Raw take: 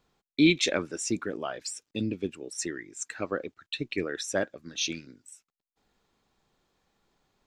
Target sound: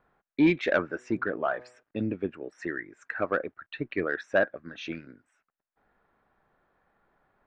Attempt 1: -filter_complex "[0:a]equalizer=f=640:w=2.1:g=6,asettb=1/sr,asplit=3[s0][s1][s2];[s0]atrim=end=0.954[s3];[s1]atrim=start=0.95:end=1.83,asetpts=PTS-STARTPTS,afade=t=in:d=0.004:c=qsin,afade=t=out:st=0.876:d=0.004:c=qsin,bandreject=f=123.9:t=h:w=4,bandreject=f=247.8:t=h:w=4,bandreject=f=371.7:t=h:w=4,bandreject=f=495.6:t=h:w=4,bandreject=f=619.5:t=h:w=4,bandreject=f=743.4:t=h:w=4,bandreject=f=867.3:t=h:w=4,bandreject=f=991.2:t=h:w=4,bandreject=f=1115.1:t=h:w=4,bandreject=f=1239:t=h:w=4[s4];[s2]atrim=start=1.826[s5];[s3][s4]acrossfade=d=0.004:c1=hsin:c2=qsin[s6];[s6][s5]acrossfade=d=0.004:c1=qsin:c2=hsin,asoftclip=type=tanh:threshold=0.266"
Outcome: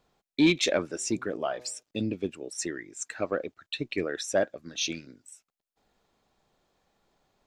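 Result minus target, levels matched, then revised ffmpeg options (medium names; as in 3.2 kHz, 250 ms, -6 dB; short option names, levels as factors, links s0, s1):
2 kHz band -4.0 dB
-filter_complex "[0:a]lowpass=f=1600:t=q:w=2.7,equalizer=f=640:w=2.1:g=6,asettb=1/sr,asplit=3[s0][s1][s2];[s0]atrim=end=0.954[s3];[s1]atrim=start=0.95:end=1.83,asetpts=PTS-STARTPTS,afade=t=in:d=0.004:c=qsin,afade=t=out:st=0.876:d=0.004:c=qsin,bandreject=f=123.9:t=h:w=4,bandreject=f=247.8:t=h:w=4,bandreject=f=371.7:t=h:w=4,bandreject=f=495.6:t=h:w=4,bandreject=f=619.5:t=h:w=4,bandreject=f=743.4:t=h:w=4,bandreject=f=867.3:t=h:w=4,bandreject=f=991.2:t=h:w=4,bandreject=f=1115.1:t=h:w=4,bandreject=f=1239:t=h:w=4[s4];[s2]atrim=start=1.826[s5];[s3][s4]acrossfade=d=0.004:c1=hsin:c2=qsin[s6];[s6][s5]acrossfade=d=0.004:c1=qsin:c2=hsin,asoftclip=type=tanh:threshold=0.266"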